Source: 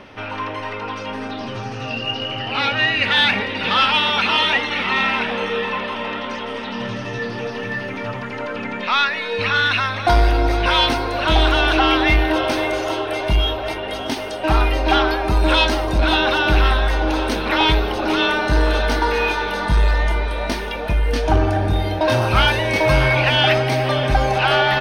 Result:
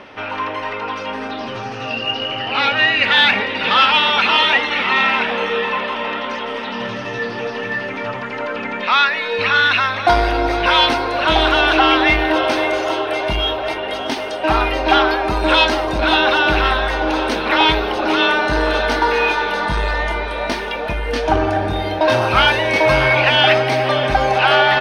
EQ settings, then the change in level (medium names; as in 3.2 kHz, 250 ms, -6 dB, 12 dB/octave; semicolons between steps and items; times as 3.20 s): bass shelf 200 Hz -12 dB; treble shelf 7 kHz -11 dB; +4.5 dB